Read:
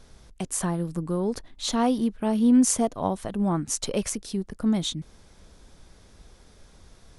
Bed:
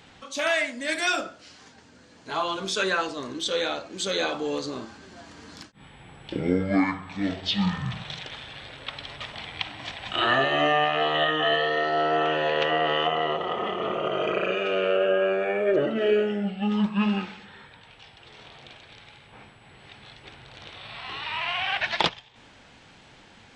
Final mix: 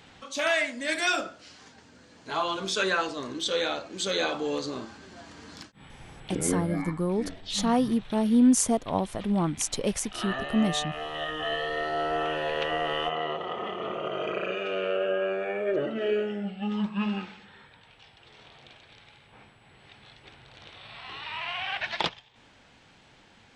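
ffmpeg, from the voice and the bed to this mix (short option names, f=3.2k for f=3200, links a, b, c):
-filter_complex "[0:a]adelay=5900,volume=-1dB[a];[1:a]volume=5.5dB,afade=t=out:st=6.27:d=0.52:silence=0.298538,afade=t=in:st=11.07:d=0.79:silence=0.473151[b];[a][b]amix=inputs=2:normalize=0"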